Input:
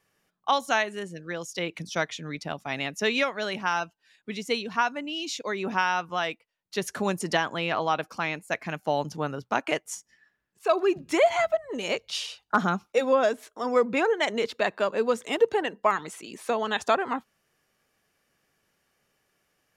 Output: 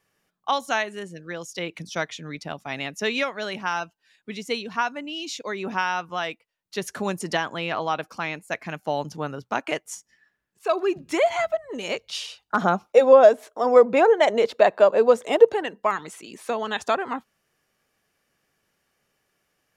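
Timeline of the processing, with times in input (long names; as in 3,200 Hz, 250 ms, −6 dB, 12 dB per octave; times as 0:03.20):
0:12.61–0:15.54: parametric band 630 Hz +11.5 dB 1.3 octaves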